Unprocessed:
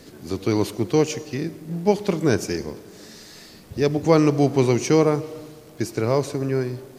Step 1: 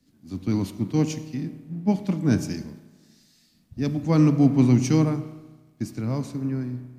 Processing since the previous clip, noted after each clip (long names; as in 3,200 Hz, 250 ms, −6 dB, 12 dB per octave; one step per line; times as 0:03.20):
low shelf with overshoot 320 Hz +7 dB, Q 3
spring reverb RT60 2.3 s, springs 32 ms, chirp 30 ms, DRR 10.5 dB
multiband upward and downward expander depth 70%
level −8.5 dB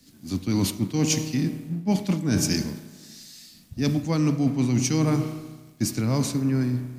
high-shelf EQ 2,400 Hz +10 dB
reversed playback
downward compressor 10 to 1, threshold −26 dBFS, peak gain reduction 14 dB
reversed playback
level +7 dB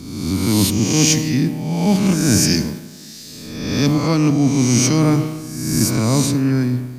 peak hold with a rise ahead of every peak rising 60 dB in 1.18 s
level +5.5 dB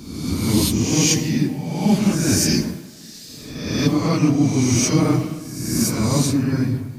random phases in long frames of 50 ms
level −2.5 dB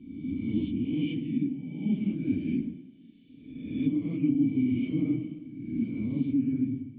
formant resonators in series i
level −4.5 dB